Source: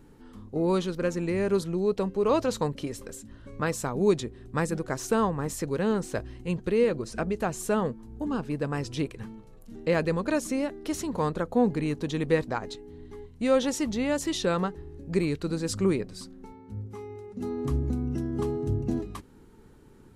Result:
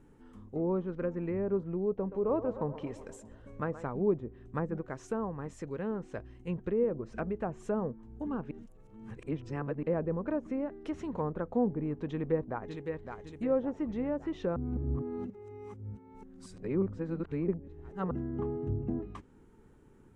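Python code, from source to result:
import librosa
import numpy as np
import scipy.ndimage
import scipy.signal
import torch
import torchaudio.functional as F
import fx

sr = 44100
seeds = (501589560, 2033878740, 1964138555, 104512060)

y = fx.echo_banded(x, sr, ms=124, feedback_pct=67, hz=680.0, wet_db=-12, at=(1.99, 3.87))
y = fx.echo_throw(y, sr, start_s=12.12, length_s=1.06, ms=560, feedback_pct=50, wet_db=-7.5)
y = fx.edit(y, sr, fx.clip_gain(start_s=4.81, length_s=1.66, db=-3.5),
    fx.reverse_span(start_s=8.51, length_s=1.32),
    fx.reverse_span(start_s=14.56, length_s=3.55), tone=tone)
y = scipy.signal.sosfilt(scipy.signal.butter(2, 9500.0, 'lowpass', fs=sr, output='sos'), y)
y = fx.env_lowpass_down(y, sr, base_hz=900.0, full_db=-22.5)
y = fx.peak_eq(y, sr, hz=4400.0, db=-10.0, octaves=0.76)
y = y * librosa.db_to_amplitude(-5.5)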